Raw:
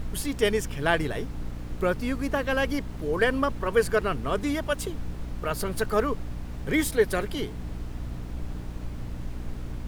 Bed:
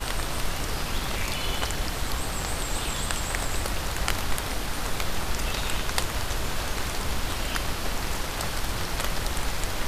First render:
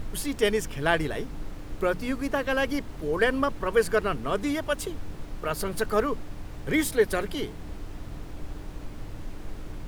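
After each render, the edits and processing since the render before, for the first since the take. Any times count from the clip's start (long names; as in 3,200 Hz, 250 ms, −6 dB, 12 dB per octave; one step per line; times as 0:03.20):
mains-hum notches 60/120/180/240 Hz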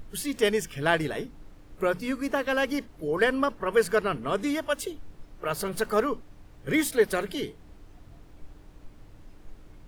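noise reduction from a noise print 12 dB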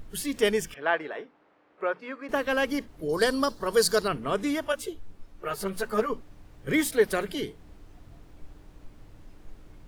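0:00.74–0:02.29: band-pass filter 510–2,100 Hz
0:03.09–0:04.08: high shelf with overshoot 3,300 Hz +9 dB, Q 3
0:04.72–0:06.10: string-ensemble chorus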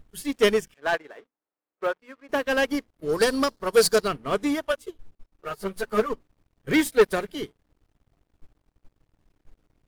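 leveller curve on the samples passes 3
expander for the loud parts 2.5 to 1, over −28 dBFS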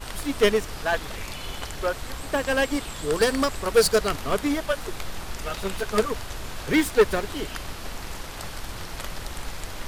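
mix in bed −6 dB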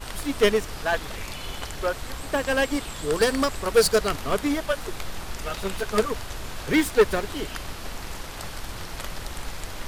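no processing that can be heard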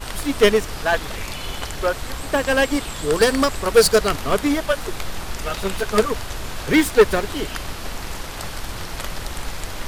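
level +5 dB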